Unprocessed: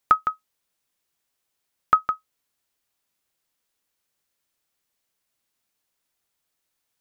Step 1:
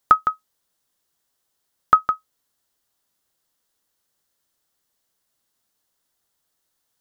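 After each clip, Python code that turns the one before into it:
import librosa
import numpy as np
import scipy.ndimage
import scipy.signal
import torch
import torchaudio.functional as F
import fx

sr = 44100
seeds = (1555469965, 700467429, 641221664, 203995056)

y = fx.peak_eq(x, sr, hz=2400.0, db=-8.5, octaves=0.42)
y = F.gain(torch.from_numpy(y), 4.0).numpy()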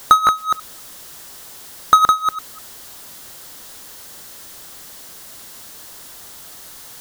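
y = fx.reverse_delay(x, sr, ms=199, wet_db=-9)
y = fx.power_curve(y, sr, exponent=0.5)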